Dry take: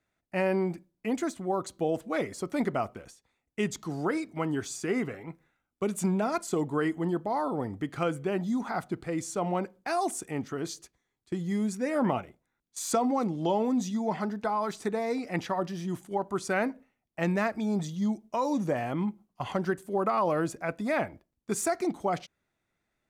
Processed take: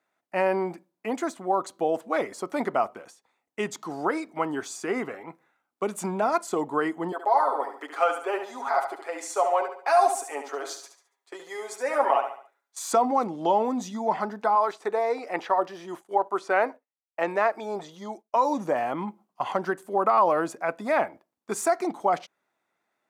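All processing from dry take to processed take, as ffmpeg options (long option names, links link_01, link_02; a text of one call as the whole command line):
ffmpeg -i in.wav -filter_complex "[0:a]asettb=1/sr,asplit=3[link_01][link_02][link_03];[link_01]atrim=end=7.124[link_04];[link_02]atrim=start=7.12:end=12.78,asetpts=PTS-STARTPTS,afade=type=in:duration=0.004:curve=qsin,afade=type=out:start_time=5.656:duration=0.004:curve=qsin,highpass=frequency=430:width=0.5412,highpass=frequency=430:width=1.3066,aecho=1:1:7.3:0.71,atrim=end_sample=249606,aecho=1:1:71|142|213|284:0.398|0.155|0.0606|0.0236,atrim=end_sample=249606[link_05];[link_03]atrim=start=12.776[link_06];[link_04][link_05]acrossfade=duration=0.004:curve1=hsin:curve2=qsin[link_07];[link_07][link_06]acrossfade=duration=0.004:curve1=qsin:curve2=hsin,asettb=1/sr,asplit=3[link_08][link_09][link_10];[link_08]atrim=end=14.554[link_11];[link_09]atrim=start=14.55:end=18.36,asetpts=PTS-STARTPTS,afade=type=in:duration=0.004:curve=qsin,afade=type=out:start_time=3.806:duration=0.004:curve=qsin,agate=range=-33dB:threshold=-44dB:ratio=3:release=100:detection=peak,acrossover=split=4300[link_12][link_13];[link_13]acompressor=threshold=-55dB:ratio=4:attack=1:release=60[link_14];[link_12][link_14]amix=inputs=2:normalize=0,lowshelf=frequency=300:width_type=q:width=1.5:gain=-7.5[link_15];[link_10]atrim=start=18.356[link_16];[link_11][link_15]acrossfade=duration=0.004:curve1=hsin:curve2=qsin[link_17];[link_17][link_16]acrossfade=duration=0.004:curve1=qsin:curve2=hsin,highpass=250,equalizer=frequency=930:width_type=o:width=1.5:gain=8.5" out.wav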